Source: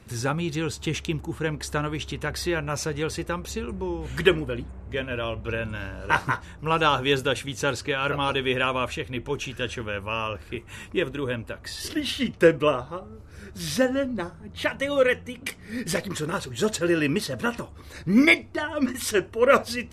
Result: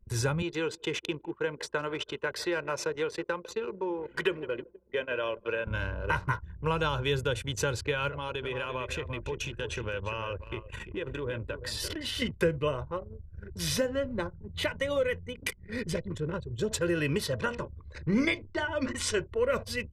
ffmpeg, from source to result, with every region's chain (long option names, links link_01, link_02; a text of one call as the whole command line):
ffmpeg -i in.wav -filter_complex "[0:a]asettb=1/sr,asplit=3[link_01][link_02][link_03];[link_01]atrim=end=0.424[link_04];[link_02]atrim=start=0.42:end=5.67,asetpts=PTS-STARTPTS,afade=type=in:duration=0.004:curve=qsin,afade=type=out:start_time=5.246:duration=0.004:curve=qsin,highpass=310,aemphasis=mode=reproduction:type=cd,aecho=1:1:159|318|477:0.1|0.046|0.0212,atrim=end_sample=231525[link_05];[link_03]atrim=start=5.666[link_06];[link_04][link_05]acrossfade=duration=0.004:curve1=hsin:curve2=qsin[link_07];[link_07][link_06]acrossfade=duration=0.004:curve1=qsin:curve2=hsin,asettb=1/sr,asplit=3[link_08][link_09][link_10];[link_08]atrim=end=8.084[link_11];[link_09]atrim=start=8.08:end=12.22,asetpts=PTS-STARTPTS,afade=type=in:duration=0.004:curve=qsin,afade=type=out:start_time=4.136:duration=0.004:curve=qsin,acompressor=threshold=-31dB:ratio=8:attack=3.2:release=140:knee=1:detection=peak,aecho=1:1:343:0.355,atrim=end_sample=182574[link_12];[link_10]atrim=start=12.216[link_13];[link_11][link_12]acrossfade=duration=0.004:curve1=hsin:curve2=qsin[link_14];[link_14][link_13]acrossfade=duration=0.004:curve1=qsin:curve2=hsin,asettb=1/sr,asplit=3[link_15][link_16][link_17];[link_15]atrim=end=15.844[link_18];[link_16]atrim=start=15.84:end=16.71,asetpts=PTS-STARTPTS,afade=type=in:duration=0.004:curve=qsin,afade=type=out:start_time=0.866:duration=0.004:curve=qsin,lowpass=frequency=2300:poles=1,equalizer=frequency=1100:width_type=o:width=2.5:gain=-11[link_19];[link_17]atrim=start=16.706[link_20];[link_18][link_19]acrossfade=duration=0.004:curve1=hsin:curve2=qsin[link_21];[link_21][link_20]acrossfade=duration=0.004:curve1=qsin:curve2=hsin,asettb=1/sr,asplit=3[link_22][link_23][link_24];[link_22]atrim=end=17.364[link_25];[link_23]atrim=start=17.36:end=19.2,asetpts=PTS-STARTPTS,afade=type=in:duration=0.004:curve=qsin,afade=type=out:start_time=1.836:duration=0.004:curve=qsin,lowpass=frequency=8700:width=0.5412,lowpass=frequency=8700:width=1.3066,bandreject=frequency=60:width_type=h:width=6,bandreject=frequency=120:width_type=h:width=6,bandreject=frequency=180:width_type=h:width=6,bandreject=frequency=240:width_type=h:width=6,bandreject=frequency=300:width_type=h:width=6,bandreject=frequency=360:width_type=h:width=6,bandreject=frequency=420:width_type=h:width=6,bandreject=frequency=480:width_type=h:width=6,bandreject=frequency=540:width_type=h:width=6[link_26];[link_24]atrim=start=19.196[link_27];[link_25][link_26]acrossfade=duration=0.004:curve1=hsin:curve2=qsin[link_28];[link_28][link_27]acrossfade=duration=0.004:curve1=qsin:curve2=hsin,anlmdn=1,aecho=1:1:2:0.49,acrossover=split=200[link_29][link_30];[link_30]acompressor=threshold=-28dB:ratio=4[link_31];[link_29][link_31]amix=inputs=2:normalize=0" out.wav